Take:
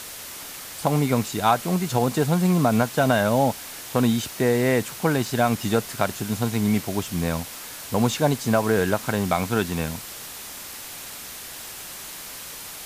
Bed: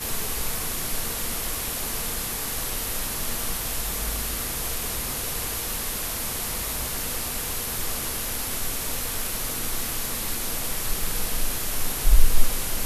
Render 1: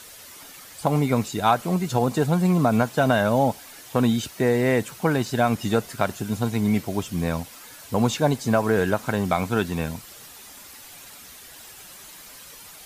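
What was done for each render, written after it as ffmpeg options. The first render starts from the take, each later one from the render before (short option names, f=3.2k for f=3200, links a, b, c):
-af "afftdn=nr=9:nf=-38"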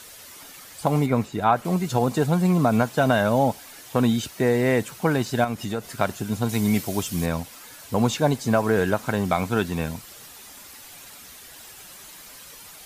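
-filter_complex "[0:a]asettb=1/sr,asplit=3[a][b][c];[a]atrim=end=1.064[d];[b]atrim=start=1.06:end=1.65,asetpts=PTS-STARTPTS,afade=t=in:d=0.004:c=qsin,afade=t=out:st=0.586:d=0.004:c=qsin,acrossover=split=2500[e][f];[f]acompressor=threshold=-46dB:ratio=4:attack=1:release=60[g];[e][g]amix=inputs=2:normalize=0[h];[c]atrim=start=1.646[i];[d][h]acrossfade=d=0.004:c1=hsin:c2=qsin[j];[j][i]acrossfade=d=0.004:c1=qsin:c2=hsin,asettb=1/sr,asplit=3[k][l][m];[k]atrim=end=5.444[n];[l]atrim=start=5.44:end=5.98,asetpts=PTS-STARTPTS,afade=t=in:d=0.004:c=qsin,afade=t=out:st=0.536:d=0.004:c=qsin,acompressor=threshold=-28dB:ratio=2:attack=3.2:release=140:knee=1:detection=peak[o];[m]atrim=start=5.976[p];[n][o]acrossfade=d=0.004:c1=hsin:c2=qsin[q];[q][p]acrossfade=d=0.004:c1=qsin:c2=hsin,asettb=1/sr,asplit=3[r][s][t];[r]atrim=end=6.494[u];[s]atrim=start=6.49:end=7.26,asetpts=PTS-STARTPTS,afade=t=in:d=0.004:c=qsin,afade=t=out:st=0.766:d=0.004:c=qsin,highshelf=f=3.6k:g=9[v];[t]atrim=start=7.256[w];[u][v]acrossfade=d=0.004:c1=hsin:c2=qsin[x];[x][w]acrossfade=d=0.004:c1=qsin:c2=hsin"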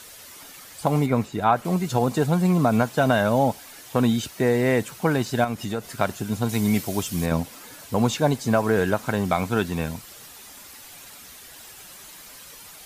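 -filter_complex "[0:a]asettb=1/sr,asplit=3[a][b][c];[a]atrim=end=7.314[d];[b]atrim=start=7.31:end=7.85,asetpts=PTS-STARTPTS,afade=t=in:d=0.004:c=qsin,afade=t=out:st=0.536:d=0.004:c=qsin,equalizer=f=270:t=o:w=2.7:g=6.5[e];[c]atrim=start=7.846[f];[d][e]acrossfade=d=0.004:c1=hsin:c2=qsin[g];[g][f]acrossfade=d=0.004:c1=qsin:c2=hsin"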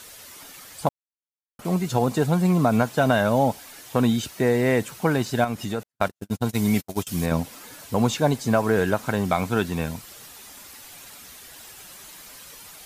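-filter_complex "[0:a]asettb=1/sr,asplit=3[a][b][c];[a]atrim=end=5.834[d];[b]atrim=start=5.83:end=7.07,asetpts=PTS-STARTPTS,afade=t=in:d=0.004:c=qsin,afade=t=out:st=1.236:d=0.004:c=qsin,agate=range=-55dB:threshold=-27dB:ratio=16:release=100:detection=peak[e];[c]atrim=start=7.066[f];[d][e]acrossfade=d=0.004:c1=hsin:c2=qsin[g];[g][f]acrossfade=d=0.004:c1=qsin:c2=hsin,asplit=3[h][i][j];[h]atrim=end=0.89,asetpts=PTS-STARTPTS,afade=t=out:st=0.886:d=0.004:c=hsin[k];[i]atrim=start=0.89:end=1.59,asetpts=PTS-STARTPTS,volume=0[l];[j]atrim=start=1.59,asetpts=PTS-STARTPTS,afade=t=in:d=0.004:c=hsin[m];[k][l][m]concat=n=3:v=0:a=1"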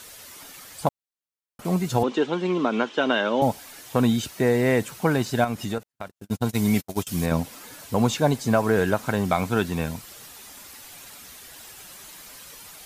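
-filter_complex "[0:a]asettb=1/sr,asplit=3[a][b][c];[a]atrim=end=2.034[d];[b]atrim=start=2.03:end=3.42,asetpts=PTS-STARTPTS,afade=t=in:d=0.004:c=qsin,afade=t=out:st=1.386:d=0.004:c=qsin,highpass=f=250:w=0.5412,highpass=f=250:w=1.3066,equalizer=f=360:t=q:w=4:g=5,equalizer=f=690:t=q:w=4:g=-8,equalizer=f=3.1k:t=q:w=4:g=10,equalizer=f=4.6k:t=q:w=4:g=-6,lowpass=f=5.4k:w=0.5412,lowpass=f=5.4k:w=1.3066[e];[c]atrim=start=3.416[f];[d][e]acrossfade=d=0.004:c1=hsin:c2=qsin[g];[g][f]acrossfade=d=0.004:c1=qsin:c2=hsin,asettb=1/sr,asplit=3[h][i][j];[h]atrim=end=5.784[k];[i]atrim=start=5.78:end=6.24,asetpts=PTS-STARTPTS,afade=t=in:d=0.004:c=qsin,afade=t=out:st=0.456:d=0.004:c=qsin,acompressor=threshold=-41dB:ratio=2:attack=3.2:release=140:knee=1:detection=peak[l];[j]atrim=start=6.236[m];[k][l]acrossfade=d=0.004:c1=hsin:c2=qsin[n];[n][m]acrossfade=d=0.004:c1=qsin:c2=hsin"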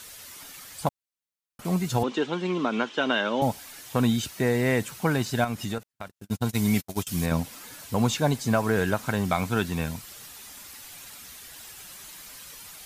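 -af "equalizer=f=480:w=0.56:g=-4.5"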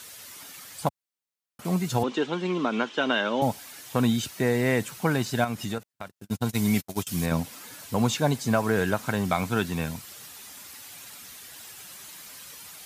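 -af "highpass=85"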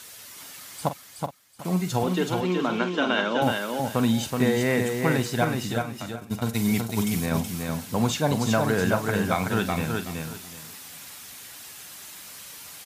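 -filter_complex "[0:a]asplit=2[a][b];[b]adelay=44,volume=-11.5dB[c];[a][c]amix=inputs=2:normalize=0,asplit=2[d][e];[e]aecho=0:1:374|748|1122:0.631|0.139|0.0305[f];[d][f]amix=inputs=2:normalize=0"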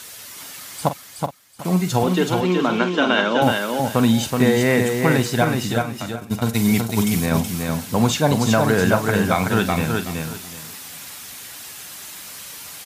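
-af "volume=6dB,alimiter=limit=-3dB:level=0:latency=1"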